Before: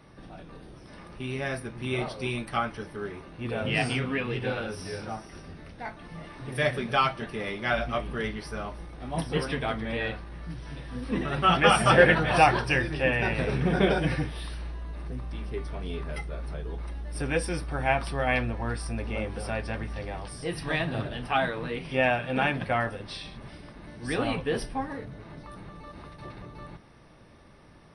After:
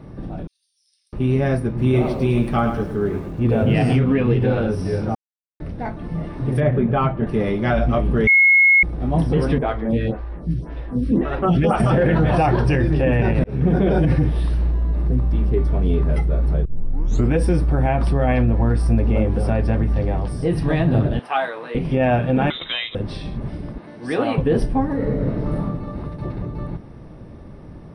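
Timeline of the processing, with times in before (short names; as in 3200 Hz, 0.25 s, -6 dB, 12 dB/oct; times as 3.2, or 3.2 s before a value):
0.47–1.13 inverse Chebyshev high-pass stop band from 820 Hz, stop band 80 dB
1.68–3.96 lo-fi delay 0.108 s, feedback 35%, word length 8-bit, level -8.5 dB
5.15–5.6 mute
6.6–7.27 air absorption 450 m
8.27–8.83 bleep 2170 Hz -10.5 dBFS
9.58–11.8 photocell phaser 1.9 Hz
13.44–13.88 fade in
16.65 tape start 0.68 s
21.19–21.75 HPF 790 Hz
22.5–22.95 inverted band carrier 3800 Hz
23.78–24.38 weighting filter A
24.95–25.59 reverb throw, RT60 1.7 s, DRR -5 dB
whole clip: tilt shelf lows +9.5 dB, about 830 Hz; limiter -17 dBFS; gain +8 dB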